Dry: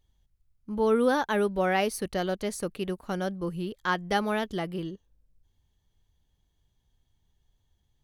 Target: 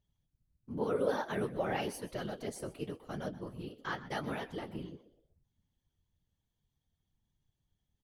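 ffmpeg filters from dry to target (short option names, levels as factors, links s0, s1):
-filter_complex "[0:a]flanger=delay=9.6:depth=8:regen=45:speed=0.93:shape=triangular,asplit=4[s0][s1][s2][s3];[s1]adelay=125,afreqshift=74,volume=0.141[s4];[s2]adelay=250,afreqshift=148,volume=0.0525[s5];[s3]adelay=375,afreqshift=222,volume=0.0193[s6];[s0][s4][s5][s6]amix=inputs=4:normalize=0,afftfilt=real='hypot(re,im)*cos(2*PI*random(0))':imag='hypot(re,im)*sin(2*PI*random(1))':win_size=512:overlap=0.75"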